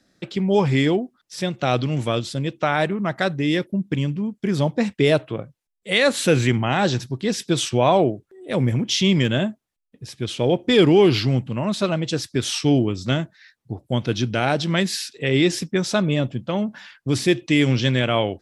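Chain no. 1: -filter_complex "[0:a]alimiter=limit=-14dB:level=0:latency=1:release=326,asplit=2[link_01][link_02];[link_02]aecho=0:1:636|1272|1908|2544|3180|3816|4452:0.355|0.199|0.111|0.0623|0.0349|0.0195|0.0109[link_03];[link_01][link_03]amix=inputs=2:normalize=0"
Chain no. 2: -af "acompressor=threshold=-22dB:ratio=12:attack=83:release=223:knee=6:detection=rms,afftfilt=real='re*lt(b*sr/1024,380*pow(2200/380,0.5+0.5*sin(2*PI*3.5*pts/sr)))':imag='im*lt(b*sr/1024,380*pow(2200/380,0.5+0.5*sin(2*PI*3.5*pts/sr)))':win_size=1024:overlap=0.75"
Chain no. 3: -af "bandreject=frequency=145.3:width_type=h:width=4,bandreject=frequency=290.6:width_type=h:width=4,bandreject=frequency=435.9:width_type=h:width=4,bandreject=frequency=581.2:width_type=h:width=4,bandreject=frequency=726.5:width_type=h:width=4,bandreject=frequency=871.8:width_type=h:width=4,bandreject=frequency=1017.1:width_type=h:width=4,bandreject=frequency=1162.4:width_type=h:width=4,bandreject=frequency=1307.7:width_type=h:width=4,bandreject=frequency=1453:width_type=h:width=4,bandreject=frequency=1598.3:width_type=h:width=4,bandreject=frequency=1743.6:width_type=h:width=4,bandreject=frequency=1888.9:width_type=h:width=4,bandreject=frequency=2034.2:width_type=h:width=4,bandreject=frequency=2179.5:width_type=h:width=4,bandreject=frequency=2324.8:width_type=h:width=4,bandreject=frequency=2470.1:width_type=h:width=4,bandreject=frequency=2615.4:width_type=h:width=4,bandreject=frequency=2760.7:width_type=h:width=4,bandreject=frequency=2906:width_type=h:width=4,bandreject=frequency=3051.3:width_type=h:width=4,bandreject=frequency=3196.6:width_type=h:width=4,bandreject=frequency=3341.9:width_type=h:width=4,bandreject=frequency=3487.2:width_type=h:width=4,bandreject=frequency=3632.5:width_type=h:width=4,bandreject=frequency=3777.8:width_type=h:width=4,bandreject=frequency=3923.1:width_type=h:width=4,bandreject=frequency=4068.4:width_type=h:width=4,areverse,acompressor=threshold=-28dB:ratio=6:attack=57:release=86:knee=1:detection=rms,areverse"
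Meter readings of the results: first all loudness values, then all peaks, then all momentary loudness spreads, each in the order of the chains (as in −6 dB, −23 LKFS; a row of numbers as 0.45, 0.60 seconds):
−26.0, −27.5, −29.0 LKFS; −11.5, −9.5, −12.5 dBFS; 6, 7, 6 LU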